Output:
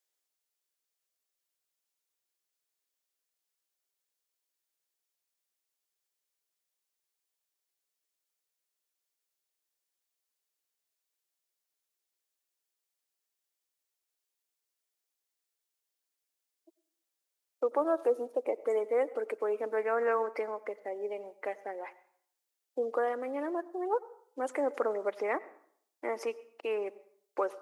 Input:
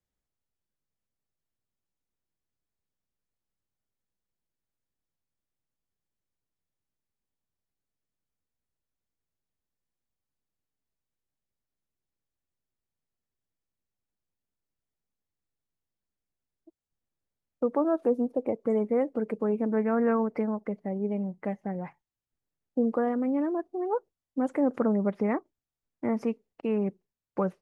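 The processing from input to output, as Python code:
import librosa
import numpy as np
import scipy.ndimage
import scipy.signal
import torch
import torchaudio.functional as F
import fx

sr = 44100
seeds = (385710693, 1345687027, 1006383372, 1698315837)

y = scipy.signal.sosfilt(scipy.signal.cheby2(4, 40, 180.0, 'highpass', fs=sr, output='sos'), x)
y = fx.high_shelf(y, sr, hz=2300.0, db=12.0)
y = fx.rev_plate(y, sr, seeds[0], rt60_s=0.63, hf_ratio=0.75, predelay_ms=80, drr_db=19.0)
y = F.gain(torch.from_numpy(y), -2.0).numpy()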